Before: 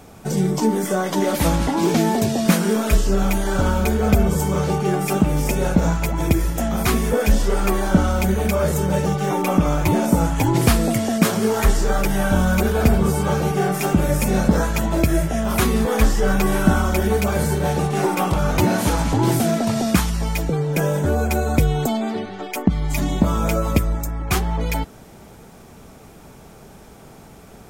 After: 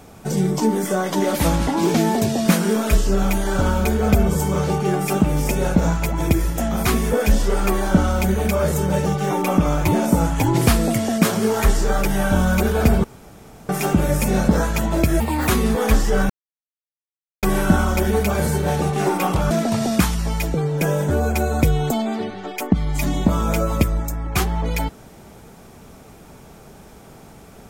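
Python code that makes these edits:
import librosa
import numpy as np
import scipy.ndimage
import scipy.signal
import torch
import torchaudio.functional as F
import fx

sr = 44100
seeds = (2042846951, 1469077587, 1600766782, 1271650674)

y = fx.edit(x, sr, fx.room_tone_fill(start_s=13.04, length_s=0.65),
    fx.speed_span(start_s=15.2, length_s=0.38, speed=1.37),
    fx.insert_silence(at_s=16.4, length_s=1.13),
    fx.cut(start_s=18.48, length_s=0.98), tone=tone)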